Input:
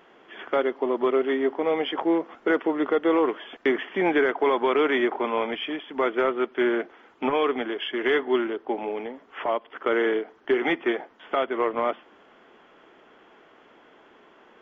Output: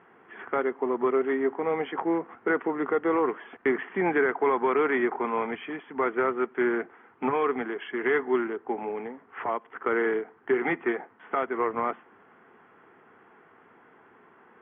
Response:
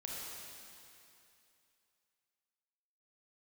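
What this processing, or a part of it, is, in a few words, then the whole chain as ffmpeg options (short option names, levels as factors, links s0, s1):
bass cabinet: -af "highpass=71,equalizer=f=110:t=q:w=4:g=7,equalizer=f=160:t=q:w=4:g=3,equalizer=f=310:t=q:w=4:g=-5,equalizer=f=590:t=q:w=4:g=-10,lowpass=f=2100:w=0.5412,lowpass=f=2100:w=1.3066"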